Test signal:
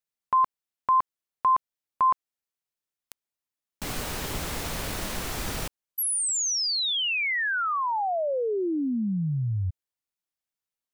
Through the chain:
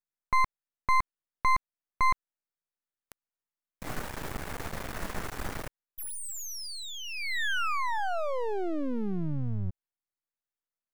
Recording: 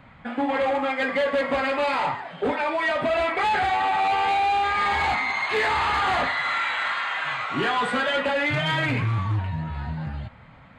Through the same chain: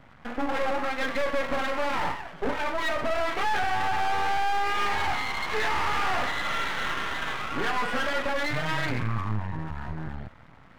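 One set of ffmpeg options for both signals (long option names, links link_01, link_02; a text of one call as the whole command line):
ffmpeg -i in.wav -af "highshelf=frequency=2300:width_type=q:width=1.5:gain=-7,aeval=exprs='max(val(0),0)':channel_layout=same" out.wav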